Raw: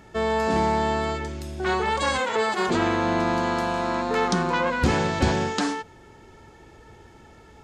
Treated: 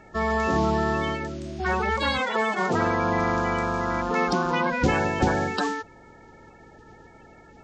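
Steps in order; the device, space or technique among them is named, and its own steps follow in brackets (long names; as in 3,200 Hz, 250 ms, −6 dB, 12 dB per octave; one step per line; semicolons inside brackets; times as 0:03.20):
clip after many re-uploads (low-pass filter 6,400 Hz 24 dB per octave; spectral magnitudes quantised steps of 30 dB)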